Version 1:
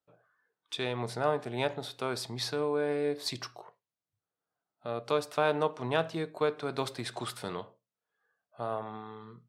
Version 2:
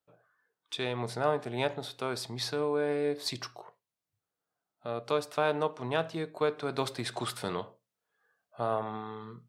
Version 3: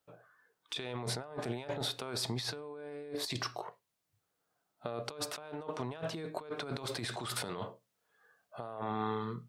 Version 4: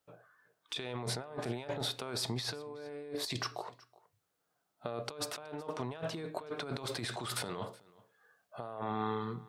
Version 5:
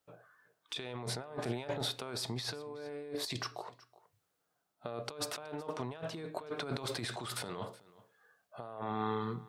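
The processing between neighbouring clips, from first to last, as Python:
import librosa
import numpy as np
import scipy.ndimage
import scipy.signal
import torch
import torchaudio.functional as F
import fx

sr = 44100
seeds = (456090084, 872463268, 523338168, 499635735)

y1 = fx.rider(x, sr, range_db=4, speed_s=2.0)
y2 = fx.over_compress(y1, sr, threshold_db=-40.0, ratio=-1.0)
y3 = y2 + 10.0 ** (-23.0 / 20.0) * np.pad(y2, (int(372 * sr / 1000.0), 0))[:len(y2)]
y4 = fx.tremolo_shape(y3, sr, shape='triangle', hz=0.78, depth_pct=40)
y4 = y4 * librosa.db_to_amplitude(1.5)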